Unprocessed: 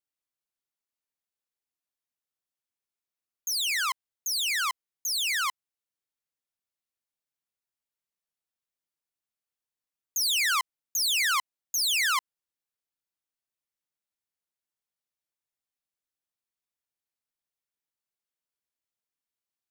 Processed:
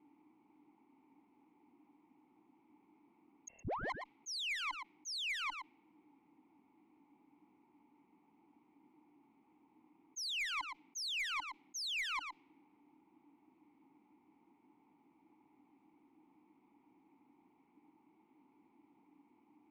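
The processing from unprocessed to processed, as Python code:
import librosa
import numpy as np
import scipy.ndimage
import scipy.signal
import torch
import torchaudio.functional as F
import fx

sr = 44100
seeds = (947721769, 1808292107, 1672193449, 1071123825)

y = fx.env_lowpass(x, sr, base_hz=1100.0, full_db=-25.0)
y = fx.vowel_filter(y, sr, vowel='u')
y = fx.peak_eq(y, sr, hz=220.0, db=7.0, octaves=1.3)
y = fx.freq_invert(y, sr, carrier_hz=3000, at=(3.48, 3.9))
y = 10.0 ** (-39.0 / 20.0) * np.tanh(y / 10.0 ** (-39.0 / 20.0))
y = y + 10.0 ** (-23.5 / 20.0) * np.pad(y, (int(116 * sr / 1000.0), 0))[:len(y)]
y = fx.cheby_harmonics(y, sr, harmonics=(2, 4), levels_db=(-23, -25), full_scale_db=-39.0)
y = fx.env_flatten(y, sr, amount_pct=70)
y = F.gain(torch.from_numpy(y), 4.0).numpy()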